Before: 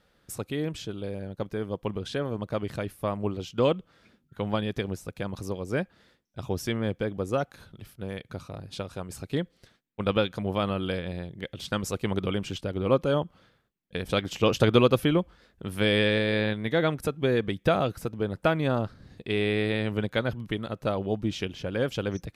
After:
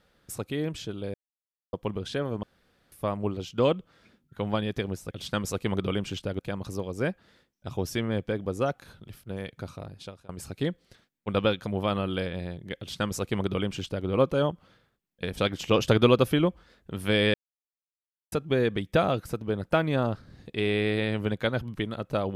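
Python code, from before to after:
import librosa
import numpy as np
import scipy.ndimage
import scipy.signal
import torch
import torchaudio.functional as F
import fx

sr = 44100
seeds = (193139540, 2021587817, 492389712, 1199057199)

y = fx.edit(x, sr, fx.silence(start_s=1.14, length_s=0.59),
    fx.room_tone_fill(start_s=2.43, length_s=0.49),
    fx.fade_out_to(start_s=8.5, length_s=0.51, floor_db=-23.5),
    fx.duplicate(start_s=11.5, length_s=1.28, to_s=5.11),
    fx.silence(start_s=16.06, length_s=0.98), tone=tone)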